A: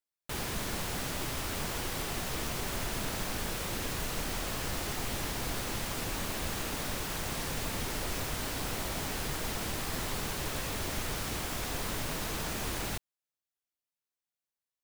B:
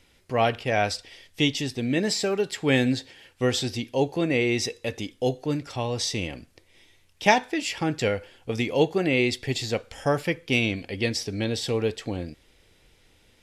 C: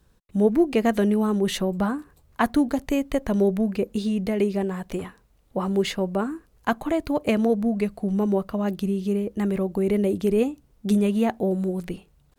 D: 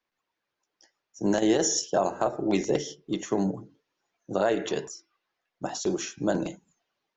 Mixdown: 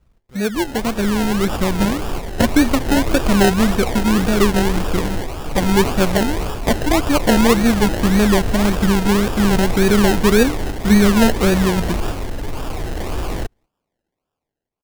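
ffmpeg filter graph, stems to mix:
-filter_complex "[0:a]highshelf=f=9000:g=5,aecho=1:1:2.6:0.57,asoftclip=type=tanh:threshold=0.0282,adelay=250,volume=0.944,asplit=2[s0][s1];[s1]volume=0.708[s2];[1:a]acompressor=threshold=0.0355:ratio=6,volume=0.178,asplit=2[s3][s4];[s4]volume=0.316[s5];[2:a]volume=0.708,asplit=2[s6][s7];[3:a]acompressor=threshold=0.0631:ratio=6,adelay=1650,volume=0.355[s8];[s7]apad=whole_len=665152[s9];[s0][s9]sidechaingate=range=0.0224:threshold=0.002:ratio=16:detection=peak[s10];[s2][s5]amix=inputs=2:normalize=0,aecho=0:1:235:1[s11];[s10][s3][s6][s8][s11]amix=inputs=5:normalize=0,lowshelf=f=110:g=9,dynaudnorm=f=200:g=13:m=5.01,acrusher=samples=30:mix=1:aa=0.000001:lfo=1:lforange=18:lforate=1.8"

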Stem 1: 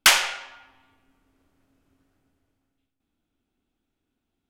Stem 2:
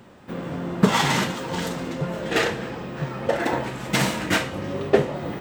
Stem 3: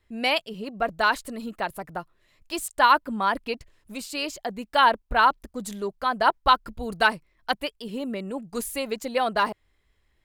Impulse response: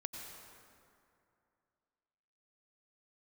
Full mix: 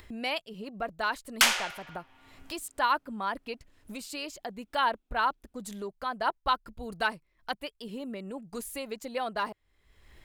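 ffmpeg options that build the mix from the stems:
-filter_complex "[0:a]adelay=1350,volume=0.501[s0];[2:a]volume=0.376[s1];[s0][s1]amix=inputs=2:normalize=0,acompressor=mode=upward:threshold=0.02:ratio=2.5"

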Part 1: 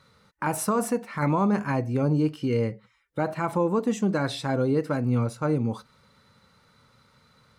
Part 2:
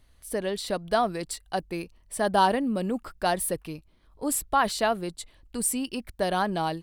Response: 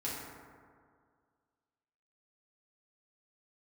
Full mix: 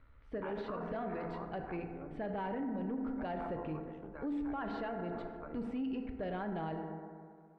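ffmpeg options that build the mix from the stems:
-filter_complex "[0:a]highpass=f=720:p=1,tremolo=f=72:d=0.889,volume=0.501,afade=t=out:st=0.98:d=0.22:silence=0.298538,asplit=2[s0][s1];[s1]volume=0.299[s2];[1:a]equalizer=f=1100:t=o:w=2:g=-8.5,asoftclip=type=tanh:threshold=0.0668,volume=0.631,asplit=2[s3][s4];[s4]volume=0.531[s5];[2:a]atrim=start_sample=2205[s6];[s2][s5]amix=inputs=2:normalize=0[s7];[s7][s6]afir=irnorm=-1:irlink=0[s8];[s0][s3][s8]amix=inputs=3:normalize=0,lowpass=f=2300:w=0.5412,lowpass=f=2300:w=1.3066,alimiter=level_in=2.37:limit=0.0631:level=0:latency=1:release=35,volume=0.422"

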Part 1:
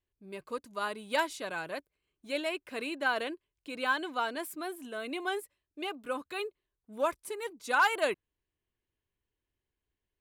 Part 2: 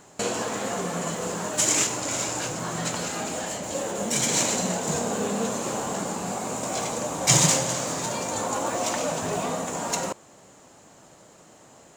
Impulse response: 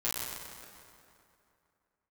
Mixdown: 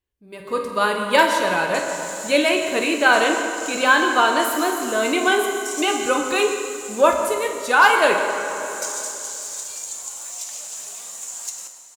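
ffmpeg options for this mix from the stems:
-filter_complex "[0:a]volume=0.841,asplit=3[s0][s1][s2];[s1]volume=0.562[s3];[1:a]aemphasis=mode=production:type=50kf,acompressor=threshold=0.0562:ratio=6,bandpass=f=8000:t=q:w=0.62:csg=0,adelay=1550,volume=0.133,asplit=2[s4][s5];[s5]volume=0.335[s6];[s2]apad=whole_len=595833[s7];[s4][s7]sidechaincompress=threshold=0.0112:ratio=8:attack=16:release=735[s8];[2:a]atrim=start_sample=2205[s9];[s3][s6]amix=inputs=2:normalize=0[s10];[s10][s9]afir=irnorm=-1:irlink=0[s11];[s0][s8][s11]amix=inputs=3:normalize=0,dynaudnorm=f=110:g=9:m=5.01"

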